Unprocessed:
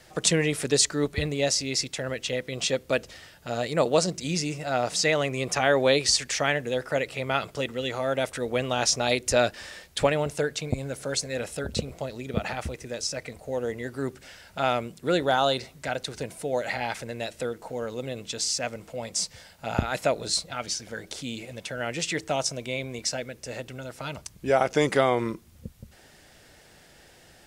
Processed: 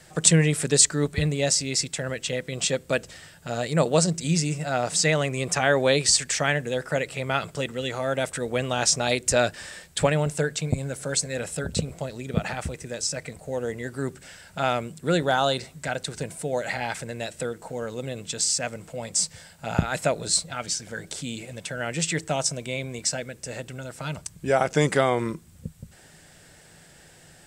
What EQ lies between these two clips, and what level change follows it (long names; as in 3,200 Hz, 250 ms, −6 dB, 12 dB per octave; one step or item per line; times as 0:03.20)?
thirty-one-band graphic EQ 100 Hz +4 dB, 160 Hz +10 dB, 1,600 Hz +3 dB, 8,000 Hz +10 dB
0.0 dB